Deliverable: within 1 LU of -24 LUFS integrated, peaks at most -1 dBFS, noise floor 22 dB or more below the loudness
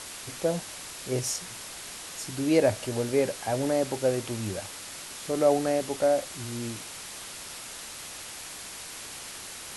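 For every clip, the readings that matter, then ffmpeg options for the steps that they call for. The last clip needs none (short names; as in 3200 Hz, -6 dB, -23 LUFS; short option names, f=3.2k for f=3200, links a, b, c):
noise floor -41 dBFS; noise floor target -52 dBFS; loudness -30.0 LUFS; peak -10.0 dBFS; loudness target -24.0 LUFS
-> -af "afftdn=nr=11:nf=-41"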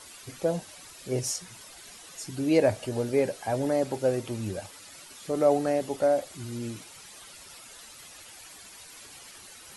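noise floor -48 dBFS; noise floor target -51 dBFS
-> -af "afftdn=nr=6:nf=-48"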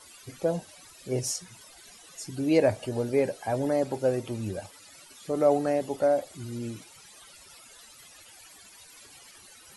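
noise floor -52 dBFS; loudness -28.5 LUFS; peak -10.0 dBFS; loudness target -24.0 LUFS
-> -af "volume=4.5dB"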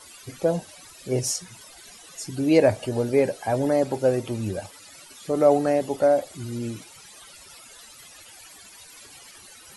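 loudness -24.0 LUFS; peak -5.5 dBFS; noise floor -48 dBFS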